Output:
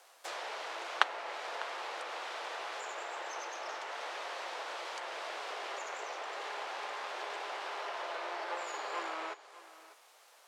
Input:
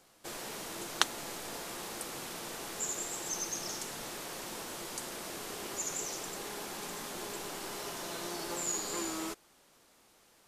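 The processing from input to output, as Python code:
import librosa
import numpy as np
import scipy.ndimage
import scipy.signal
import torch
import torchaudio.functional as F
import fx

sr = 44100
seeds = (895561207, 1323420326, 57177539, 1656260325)

p1 = fx.halfwave_hold(x, sr)
p2 = scipy.signal.sosfilt(scipy.signal.butter(4, 560.0, 'highpass', fs=sr, output='sos'), p1)
p3 = fx.env_lowpass_down(p2, sr, base_hz=2500.0, full_db=-33.5)
y = p3 + fx.echo_single(p3, sr, ms=600, db=-17.0, dry=0)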